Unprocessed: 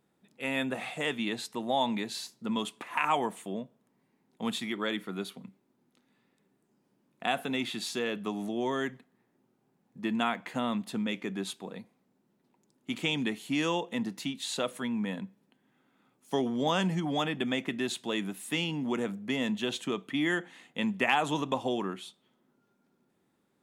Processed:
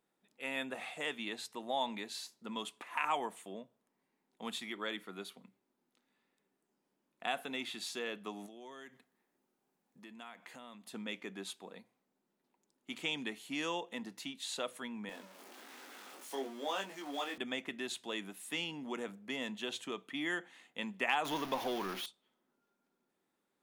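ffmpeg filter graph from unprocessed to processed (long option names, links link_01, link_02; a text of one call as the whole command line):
ffmpeg -i in.wav -filter_complex "[0:a]asettb=1/sr,asplit=3[link_01][link_02][link_03];[link_01]atrim=end=8.464[link_04];[link_02]atrim=start=8.46:end=10.94,asetpts=PTS-STARTPTS,afade=type=in:duration=0.004:curve=qsin,afade=type=out:start_time=2.476:duration=0.004:curve=qsin,highshelf=frequency=4700:gain=6,acompressor=threshold=-43dB:ratio=3:attack=3.2:release=140:knee=1:detection=peak[link_05];[link_03]atrim=start=10.936[link_06];[link_04][link_05]acrossfade=duration=0.004:curve1=hsin:curve2=qsin[link_07];[link_07][link_06]acrossfade=duration=0.004:curve1=qsin:curve2=hsin,asettb=1/sr,asplit=3[link_08][link_09][link_10];[link_08]atrim=end=15.094[link_11];[link_09]atrim=start=15.09:end=17.38,asetpts=PTS-STARTPTS,afade=type=in:duration=0.004:curve=qsin,afade=type=out:start_time=2.286:duration=0.004:curve=qsin,aeval=exprs='val(0)+0.5*0.0158*sgn(val(0))':channel_layout=same,highpass=frequency=260:width=0.5412,highpass=frequency=260:width=1.3066,flanger=delay=20:depth=2.4:speed=1.1[link_12];[link_10]atrim=start=17.376[link_13];[link_11][link_12]acrossfade=duration=0.004:curve1=hsin:curve2=qsin[link_14];[link_14][link_13]acrossfade=duration=0.004:curve1=qsin:curve2=hsin,asettb=1/sr,asplit=3[link_15][link_16][link_17];[link_15]atrim=end=21.254[link_18];[link_16]atrim=start=21.25:end=22.06,asetpts=PTS-STARTPTS,afade=type=in:duration=0.004:curve=qsin,afade=type=out:start_time=0.806:duration=0.004:curve=qsin,aeval=exprs='val(0)+0.5*0.0282*sgn(val(0))':channel_layout=same,equalizer=frequency=7900:width=4.2:gain=-15[link_19];[link_17]atrim=start=22.056[link_20];[link_18][link_19]acrossfade=duration=0.004:curve1=hsin:curve2=qsin[link_21];[link_21][link_20]acrossfade=duration=0.004:curve1=qsin:curve2=hsin,equalizer=frequency=96:width=0.48:gain=-13,bandreject=frequency=60:width_type=h:width=6,bandreject=frequency=120:width_type=h:width=6,volume=-5.5dB" out.wav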